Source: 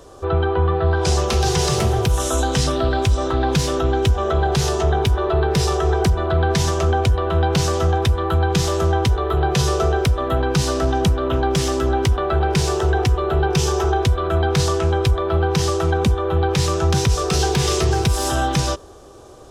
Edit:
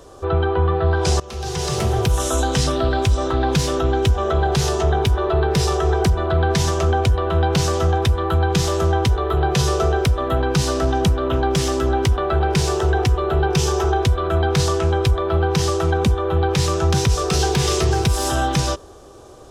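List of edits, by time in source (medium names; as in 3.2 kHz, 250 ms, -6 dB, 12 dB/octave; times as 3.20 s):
1.20–2.00 s: fade in, from -20.5 dB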